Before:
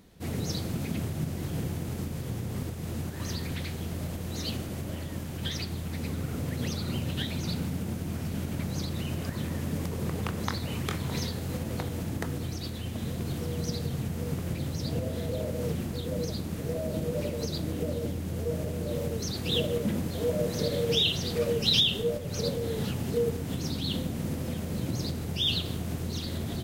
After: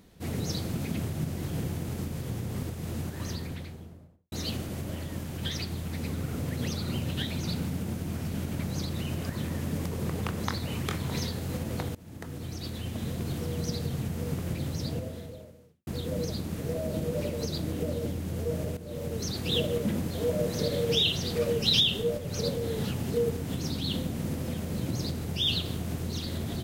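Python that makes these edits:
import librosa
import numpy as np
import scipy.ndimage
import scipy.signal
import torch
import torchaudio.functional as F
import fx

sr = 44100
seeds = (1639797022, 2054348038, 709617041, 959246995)

y = fx.studio_fade_out(x, sr, start_s=3.05, length_s=1.27)
y = fx.edit(y, sr, fx.fade_in_from(start_s=11.95, length_s=0.8, floor_db=-23.0),
    fx.fade_out_span(start_s=14.82, length_s=1.05, curve='qua'),
    fx.fade_in_from(start_s=18.77, length_s=0.45, floor_db=-13.0), tone=tone)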